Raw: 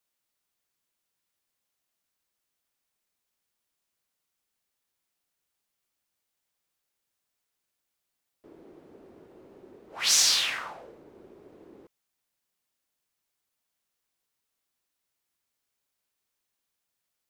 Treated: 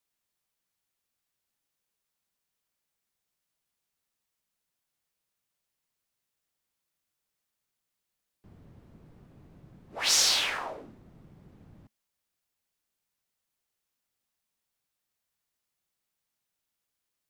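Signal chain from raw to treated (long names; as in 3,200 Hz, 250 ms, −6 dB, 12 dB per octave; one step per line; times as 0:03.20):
frequency shifter −230 Hz
dynamic equaliser 640 Hz, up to +6 dB, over −49 dBFS, Q 0.87
level −2 dB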